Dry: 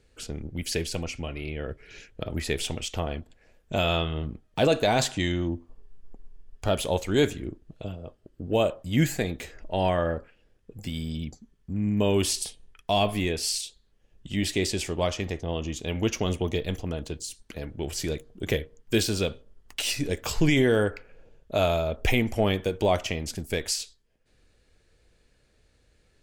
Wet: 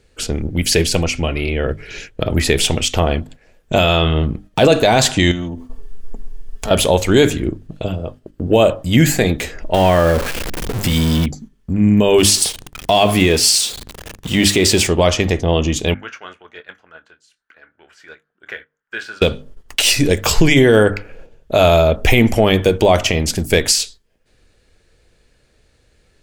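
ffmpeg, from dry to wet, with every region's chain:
ffmpeg -i in.wav -filter_complex "[0:a]asettb=1/sr,asplit=3[link_01][link_02][link_03];[link_01]atrim=end=5.314[link_04];[link_02]atrim=start=5.31:end=6.71,asetpts=PTS-STARTPTS,afade=type=in:duration=0.004:curve=qsin,afade=type=out:start_time=1.396:duration=0.004:curve=qsin,highshelf=frequency=5100:gain=6.5,acompressor=threshold=-35dB:ratio=5:attack=3.2:release=140:knee=1:detection=peak,aecho=1:1:4.5:0.57,atrim=end_sample=61740[link_05];[link_03]atrim=start=6.706[link_06];[link_04][link_05]acrossfade=duration=0.004:curve1=hsin:curve2=qsin[link_07];[link_07][link_06]acrossfade=duration=0.004:curve1=qsin:curve2=hsin,asettb=1/sr,asplit=3[link_08][link_09][link_10];[link_08]atrim=end=9.744[link_11];[link_09]atrim=start=9.74:end=11.26,asetpts=PTS-STARTPTS,afade=type=in:duration=0.004:curve=qsin,afade=type=out:start_time=1.516:duration=0.004:curve=qsin,aeval=exprs='val(0)+0.5*0.0251*sgn(val(0))':channel_layout=same,highshelf=frequency=11000:gain=3.5,acompressor=threshold=-26dB:ratio=2:attack=3.2:release=140:knee=1:detection=peak[link_12];[link_10]atrim=start=11.256[link_13];[link_11][link_12]acrossfade=duration=0.004:curve1=hsin:curve2=qsin[link_14];[link_14][link_13]acrossfade=duration=0.004:curve1=qsin:curve2=hsin,asettb=1/sr,asplit=3[link_15][link_16][link_17];[link_15]atrim=end=12.184[link_18];[link_16]atrim=start=12.18:end=14.87,asetpts=PTS-STARTPTS,afade=type=in:duration=0.004:curve=qsin,afade=type=out:start_time=2.686:duration=0.004:curve=qsin,aeval=exprs='val(0)+0.5*0.0119*sgn(val(0))':channel_layout=same,highpass=frequency=66:poles=1[link_19];[link_17]atrim=start=14.866[link_20];[link_18][link_19]acrossfade=duration=0.004:curve1=hsin:curve2=qsin[link_21];[link_21][link_20]acrossfade=duration=0.004:curve1=qsin:curve2=hsin,asettb=1/sr,asplit=3[link_22][link_23][link_24];[link_22]atrim=end=15.944[link_25];[link_23]atrim=start=15.94:end=19.22,asetpts=PTS-STARTPTS,afade=type=in:duration=0.004:curve=qsin,afade=type=out:start_time=3.276:duration=0.004:curve=qsin,bandpass=frequency=1500:width_type=q:width=6.2,asplit=2[link_26][link_27];[link_27]adelay=25,volume=-11.5dB[link_28];[link_26][link_28]amix=inputs=2:normalize=0,atrim=end_sample=144648[link_29];[link_24]atrim=start=19.216[link_30];[link_25][link_29]acrossfade=duration=0.004:curve1=hsin:curve2=qsin[link_31];[link_31][link_30]acrossfade=duration=0.004:curve1=qsin:curve2=hsin,bandreject=frequency=50:width_type=h:width=6,bandreject=frequency=100:width_type=h:width=6,bandreject=frequency=150:width_type=h:width=6,bandreject=frequency=200:width_type=h:width=6,bandreject=frequency=250:width_type=h:width=6,bandreject=frequency=300:width_type=h:width=6,agate=range=-7dB:threshold=-50dB:ratio=16:detection=peak,alimiter=level_in=16dB:limit=-1dB:release=50:level=0:latency=1,volume=-1dB" out.wav

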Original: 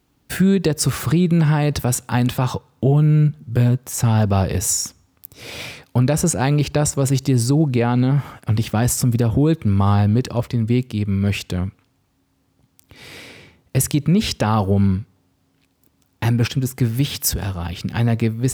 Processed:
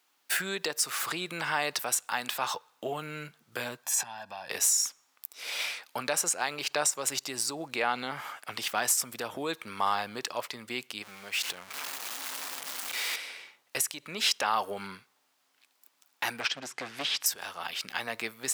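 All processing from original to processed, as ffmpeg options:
ffmpeg -i in.wav -filter_complex "[0:a]asettb=1/sr,asplit=3[link_01][link_02][link_03];[link_01]atrim=end=3.834[link_04];[link_02]atrim=start=3.83:end=4.5,asetpts=PTS-STARTPTS,afade=type=in:duration=0.004:curve=qsin,afade=type=out:start_time=0.666:duration=0.004:curve=qsin,highshelf=frequency=10000:gain=-5.5,aecho=1:1:1.2:0.85,atrim=end_sample=29547,acompressor=threshold=-22dB:ratio=20:attack=3.2:release=140:knee=1:detection=peak[link_05];[link_03]atrim=start=4.496[link_06];[link_04][link_05]acrossfade=duration=0.004:curve1=hsin:curve2=qsin[link_07];[link_07][link_06]acrossfade=duration=0.004:curve1=qsin:curve2=hsin,asettb=1/sr,asplit=3[link_08][link_09][link_10];[link_08]atrim=end=11.024[link_11];[link_09]atrim=start=11.02:end=13.16,asetpts=PTS-STARTPTS,afade=type=in:duration=0.004:curve=qsin,afade=type=out:start_time=2.136:duration=0.004:curve=qsin,aeval=exprs='val(0)+0.5*0.0447*sgn(val(0))':channel_layout=same,acompressor=threshold=-29dB:ratio=2:attack=3.2:release=140:knee=1:detection=peak[link_12];[link_10]atrim=start=13.156[link_13];[link_11][link_12]acrossfade=duration=0.004:curve1=hsin:curve2=qsin[link_14];[link_14][link_13]acrossfade=duration=0.004:curve1=qsin:curve2=hsin,asettb=1/sr,asplit=3[link_15][link_16][link_17];[link_15]atrim=end=16.404[link_18];[link_16]atrim=start=16.4:end=17.26,asetpts=PTS-STARTPTS,afade=type=in:duration=0.004:curve=qsin,afade=type=out:start_time=0.856:duration=0.004:curve=qsin,lowpass=5000,equalizer=frequency=280:width=4.1:gain=4,volume=15.5dB,asoftclip=hard,volume=-15.5dB[link_19];[link_17]atrim=start=17.256[link_20];[link_18][link_19]acrossfade=duration=0.004:curve1=hsin:curve2=qsin[link_21];[link_21][link_20]acrossfade=duration=0.004:curve1=qsin:curve2=hsin,highpass=970,alimiter=limit=-14.5dB:level=0:latency=1:release=343" out.wav

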